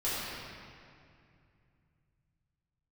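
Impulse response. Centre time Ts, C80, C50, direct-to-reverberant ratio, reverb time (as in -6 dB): 169 ms, -2.0 dB, -4.0 dB, -11.5 dB, 2.4 s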